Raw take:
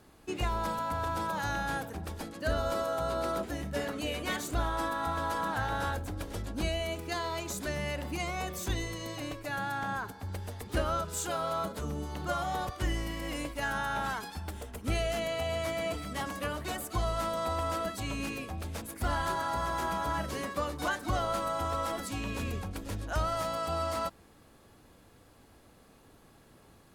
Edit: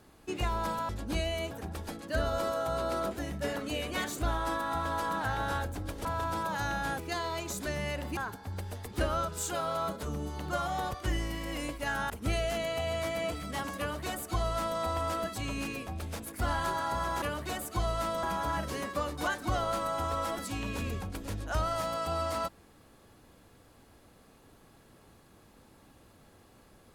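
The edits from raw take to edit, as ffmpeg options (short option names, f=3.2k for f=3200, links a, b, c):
-filter_complex "[0:a]asplit=9[a][b][c][d][e][f][g][h][i];[a]atrim=end=0.892[j];[b]atrim=start=6.368:end=6.992[k];[c]atrim=start=1.828:end=6.372[l];[d]atrim=start=0.888:end=1.832[m];[e]atrim=start=6.988:end=8.172[n];[f]atrim=start=9.928:end=13.862[o];[g]atrim=start=14.718:end=19.842[p];[h]atrim=start=16.408:end=17.422[q];[i]atrim=start=19.838[r];[j][k]acrossfade=d=0.004:c1=hsin:c2=hsin[s];[s][l]acrossfade=d=0.004:c1=hsin:c2=hsin[t];[t][m]acrossfade=d=0.004:c1=hsin:c2=hsin[u];[u][n]acrossfade=d=0.004:c1=hsin:c2=hsin[v];[v][o]acrossfade=d=0.004:c1=hsin:c2=hsin[w];[w][p]acrossfade=d=0.004:c1=hsin:c2=hsin[x];[x][q]acrossfade=d=0.004:c1=hsin:c2=hsin[y];[y][r]acrossfade=d=0.004:c1=hsin:c2=hsin"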